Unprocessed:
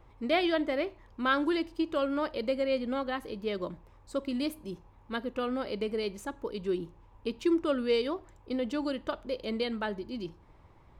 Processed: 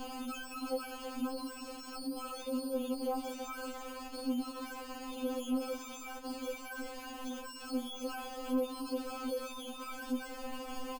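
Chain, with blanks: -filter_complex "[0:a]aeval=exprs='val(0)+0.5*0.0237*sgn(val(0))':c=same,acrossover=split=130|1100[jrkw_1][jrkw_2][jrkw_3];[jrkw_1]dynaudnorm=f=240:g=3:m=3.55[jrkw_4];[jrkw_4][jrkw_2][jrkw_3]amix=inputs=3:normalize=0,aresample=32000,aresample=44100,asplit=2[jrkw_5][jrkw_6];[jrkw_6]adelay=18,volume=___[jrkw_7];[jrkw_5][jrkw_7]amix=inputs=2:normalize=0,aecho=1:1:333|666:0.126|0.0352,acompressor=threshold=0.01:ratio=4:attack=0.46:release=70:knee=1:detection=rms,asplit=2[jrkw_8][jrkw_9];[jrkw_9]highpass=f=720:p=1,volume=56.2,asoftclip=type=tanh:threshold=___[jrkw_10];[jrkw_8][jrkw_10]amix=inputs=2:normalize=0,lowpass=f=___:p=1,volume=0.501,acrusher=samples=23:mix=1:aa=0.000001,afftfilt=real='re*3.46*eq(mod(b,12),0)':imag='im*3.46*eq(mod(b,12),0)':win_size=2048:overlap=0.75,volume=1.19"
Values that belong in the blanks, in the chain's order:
0.266, 0.0266, 1000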